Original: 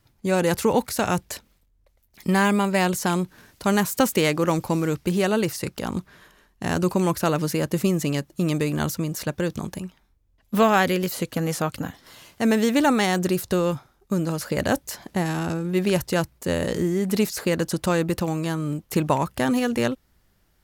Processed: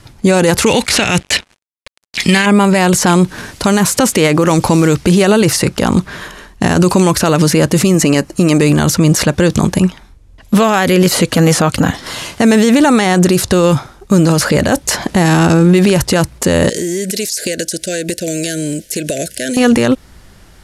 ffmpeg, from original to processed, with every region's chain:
-filter_complex "[0:a]asettb=1/sr,asplit=3[s0][s1][s2];[s0]atrim=end=0.664[s3];[s1]atrim=start=0.66:end=2.46,asetpts=PTS-STARTPTS,afade=t=in:d=0.004:c=qsin,afade=t=out:st=1.796:d=0.004:c=qsin,highshelf=f=1700:t=q:w=1.5:g=13.5,adynamicsmooth=sensitivity=6.5:basefreq=4300,acrusher=bits=7:mix=0:aa=0.5[s4];[s2]atrim=start=2.456[s5];[s3][s4]acrossfade=d=0.004:c1=hsin:c2=qsin[s6];[s6][s5]acrossfade=d=0.004:c1=qsin:c2=hsin,asettb=1/sr,asplit=3[s7][s8][s9];[s7]atrim=end=7.944[s10];[s8]atrim=start=7.94:end=8.62,asetpts=PTS-STARTPTS,afade=t=in:d=0.004:c=qsin,afade=t=out:st=0.676:d=0.004:c=qsin,equalizer=f=130:t=o:w=0.53:g=-8.5,bandreject=f=3500:w=5.5[s11];[s9]atrim=start=8.616[s12];[s10][s11]acrossfade=d=0.004:c1=hsin:c2=qsin[s13];[s13][s12]acrossfade=d=0.004:c1=qsin:c2=hsin,asettb=1/sr,asplit=3[s14][s15][s16];[s14]atrim=end=16.694[s17];[s15]atrim=start=16.69:end=19.57,asetpts=PTS-STARTPTS,afade=t=in:d=0.004:c=qsin,afade=t=out:st=2.876:d=0.004:c=qsin,asuperstop=centerf=1000:order=20:qfactor=1.3,bass=f=250:g=-12,treble=f=4000:g=12,acompressor=threshold=0.0141:ratio=12:attack=3.2:release=140:knee=1:detection=peak[s18];[s16]atrim=start=19.566[s19];[s17][s18]acrossfade=d=0.004:c1=hsin:c2=qsin[s20];[s20][s19]acrossfade=d=0.004:c1=qsin:c2=hsin,lowpass=f=11000:w=0.5412,lowpass=f=11000:w=1.3066,acrossover=split=2800|7600[s21][s22][s23];[s21]acompressor=threshold=0.0631:ratio=4[s24];[s22]acompressor=threshold=0.01:ratio=4[s25];[s23]acompressor=threshold=0.00708:ratio=4[s26];[s24][s25][s26]amix=inputs=3:normalize=0,alimiter=level_in=15.8:limit=0.891:release=50:level=0:latency=1,volume=0.891"

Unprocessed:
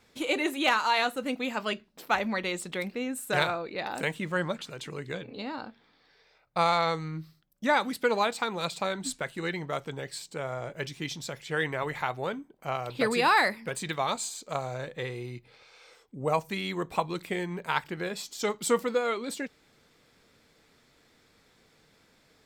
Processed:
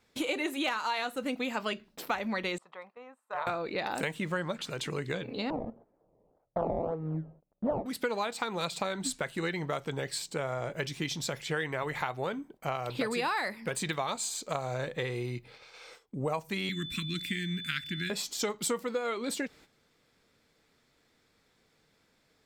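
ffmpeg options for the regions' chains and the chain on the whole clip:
-filter_complex "[0:a]asettb=1/sr,asplit=3[s0][s1][s2];[s0]atrim=end=2.584[s3];[s1]atrim=start=2.58:end=3.47,asetpts=PTS-STARTPTS,afade=t=in:d=0.004:c=qsin,afade=t=out:st=0.886:d=0.004:c=qsin,bandpass=f=980:t=q:w=5.8,aecho=1:1:1.6:0.36,atrim=end_sample=39249[s4];[s2]atrim=start=3.466[s5];[s3][s4]acrossfade=d=0.004:c1=hsin:c2=qsin[s6];[s6][s5]acrossfade=d=0.004:c1=qsin:c2=hsin,asettb=1/sr,asplit=3[s7][s8][s9];[s7]atrim=end=5.504[s10];[s8]atrim=start=5.5:end=7.86,asetpts=PTS-STARTPTS,afade=t=in:d=0.004:c=qsin,afade=t=out:st=2.356:d=0.004:c=qsin,acrusher=samples=21:mix=1:aa=0.000001:lfo=1:lforange=21:lforate=1.8,lowpass=f=600:t=q:w=1.8[s11];[s9]atrim=start=7.856[s12];[s10][s11]acrossfade=d=0.004:c1=hsin:c2=qsin[s13];[s13][s12]acrossfade=d=0.004:c1=qsin:c2=hsin,asettb=1/sr,asplit=3[s14][s15][s16];[s14]atrim=end=16.694[s17];[s15]atrim=start=16.69:end=18.1,asetpts=PTS-STARTPTS,afade=t=in:d=0.004:c=qsin,afade=t=out:st=1.406:d=0.004:c=qsin,aeval=exprs='val(0)+0.00708*sin(2*PI*3500*n/s)':c=same,asuperstop=centerf=680:order=8:qfactor=0.52[s18];[s16]atrim=start=18.096[s19];[s17][s18]acrossfade=d=0.004:c1=hsin:c2=qsin[s20];[s20][s19]acrossfade=d=0.004:c1=qsin:c2=hsin,agate=range=0.282:threshold=0.00158:ratio=16:detection=peak,acompressor=threshold=0.02:ratio=5,volume=1.68"

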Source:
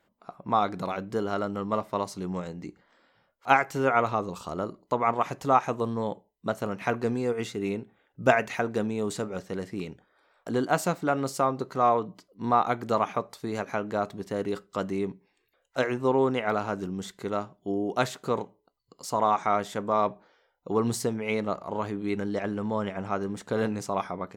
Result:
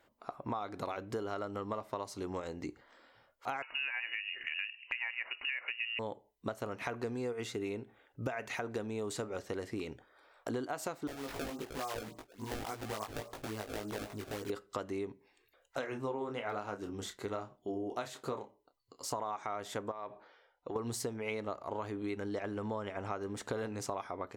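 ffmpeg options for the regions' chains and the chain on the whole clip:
-filter_complex "[0:a]asettb=1/sr,asplit=3[s0][s1][s2];[s0]atrim=end=3.624[s3];[s1]atrim=start=3.62:end=5.99,asetpts=PTS-STARTPTS,afade=t=in:d=0.004:c=qsin,afade=t=out:st=2.366:d=0.004:c=qsin,lowpass=f=2600:t=q:w=0.5098,lowpass=f=2600:t=q:w=0.6013,lowpass=f=2600:t=q:w=0.9,lowpass=f=2600:t=q:w=2.563,afreqshift=-3000,acompressor=mode=upward:threshold=0.0141:ratio=2.5:attack=3.2:release=140:knee=2.83:detection=peak,equalizer=f=110:t=o:w=0.47:g=-14[s4];[s2]atrim=start=5.986[s5];[s3][s4]acrossfade=d=0.004:c1=hsin:c2=qsin[s6];[s6][s5]acrossfade=d=0.004:c1=qsin:c2=hsin,asettb=1/sr,asplit=3[s7][s8][s9];[s7]atrim=end=11.074[s10];[s8]atrim=start=11.07:end=14.5,asetpts=PTS-STARTPTS,afade=t=in:d=0.004:c=qsin,afade=t=out:st=3.426:d=0.004:c=qsin,acrusher=samples=26:mix=1:aa=0.000001:lfo=1:lforange=41.6:lforate=3.5,acompressor=threshold=0.00794:ratio=3:attack=3.2:release=140:knee=1:detection=peak,asplit=2[s11][s12];[s12]adelay=19,volume=0.794[s13];[s11][s13]amix=inputs=2:normalize=0,atrim=end_sample=151263[s14];[s9]atrim=start=14.496[s15];[s10][s14]acrossfade=d=0.004:c1=hsin:c2=qsin[s16];[s16][s15]acrossfade=d=0.004:c1=qsin:c2=hsin,asettb=1/sr,asplit=3[s17][s18][s19];[s17]atrim=end=15.784[s20];[s18]atrim=start=15.78:end=19.12,asetpts=PTS-STARTPTS,afade=t=in:d=0.004:c=qsin,afade=t=out:st=3.336:d=0.004:c=qsin,flanger=delay=3.5:depth=8.5:regen=-54:speed=1.1:shape=triangular,asplit=2[s21][s22];[s22]adelay=29,volume=0.299[s23];[s21][s23]amix=inputs=2:normalize=0,atrim=end_sample=147294[s24];[s19]atrim=start=19.116[s25];[s20][s24]acrossfade=d=0.004:c1=hsin:c2=qsin[s26];[s26][s25]acrossfade=d=0.004:c1=qsin:c2=hsin,asettb=1/sr,asplit=3[s27][s28][s29];[s27]atrim=end=19.914[s30];[s28]atrim=start=19.91:end=20.76,asetpts=PTS-STARTPTS,afade=t=in:d=0.004:c=qsin,afade=t=out:st=0.846:d=0.004:c=qsin,lowpass=4300,acompressor=threshold=0.02:ratio=4:attack=3.2:release=140:knee=1:detection=peak,lowshelf=f=330:g=-7[s31];[s29]atrim=start=20.756[s32];[s30][s31]acrossfade=d=0.004:c1=hsin:c2=qsin[s33];[s33][s32]acrossfade=d=0.004:c1=qsin:c2=hsin,equalizer=f=180:t=o:w=0.35:g=-15,alimiter=limit=0.158:level=0:latency=1:release=120,acompressor=threshold=0.0141:ratio=6,volume=1.26"

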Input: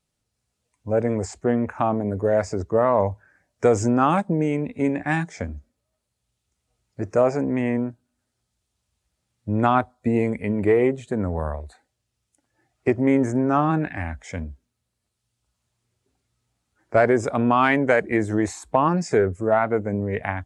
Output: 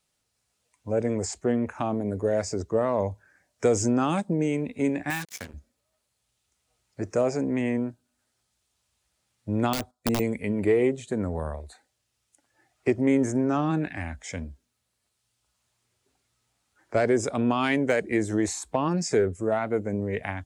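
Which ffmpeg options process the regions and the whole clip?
-filter_complex "[0:a]asettb=1/sr,asplit=3[s0][s1][s2];[s0]atrim=end=5.104[s3];[s1]atrim=start=5.1:end=5.54,asetpts=PTS-STARTPTS,afade=t=in:d=0.004:c=qsin,afade=t=out:st=0.436:d=0.004:c=qsin,lowshelf=f=700:t=q:w=1.5:g=-8,acrusher=bits=5:mix=0:aa=0.5[s4];[s2]atrim=start=5.536[s5];[s3][s4]acrossfade=d=0.004:c1=hsin:c2=qsin[s6];[s6][s5]acrossfade=d=0.004:c1=qsin:c2=hsin,asettb=1/sr,asplit=3[s7][s8][s9];[s7]atrim=end=9.734[s10];[s8]atrim=start=9.73:end=10.2,asetpts=PTS-STARTPTS,afade=t=in:d=0.004:c=qsin,afade=t=out:st=0.466:d=0.004:c=qsin,agate=range=0.316:threshold=0.00355:ratio=16:release=100:detection=peak,aeval=exprs='(mod(4.47*val(0)+1,2)-1)/4.47':c=same[s11];[s9]atrim=start=10.196[s12];[s10][s11]acrossfade=d=0.004:c1=hsin:c2=qsin[s13];[s13][s12]acrossfade=d=0.004:c1=qsin:c2=hsin,deesser=0.55,lowshelf=f=390:g=-10,acrossover=split=460|3000[s14][s15][s16];[s15]acompressor=threshold=0.00112:ratio=1.5[s17];[s14][s17][s16]amix=inputs=3:normalize=0,volume=1.68"

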